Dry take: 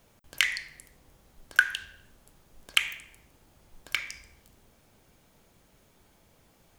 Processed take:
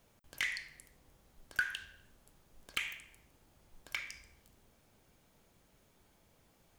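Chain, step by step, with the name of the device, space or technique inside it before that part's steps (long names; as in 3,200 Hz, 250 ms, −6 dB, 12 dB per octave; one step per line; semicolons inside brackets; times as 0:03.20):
saturation between pre-emphasis and de-emphasis (high-shelf EQ 3,000 Hz +10 dB; soft clipping −14 dBFS, distortion −5 dB; high-shelf EQ 3,000 Hz −10 dB)
level −6 dB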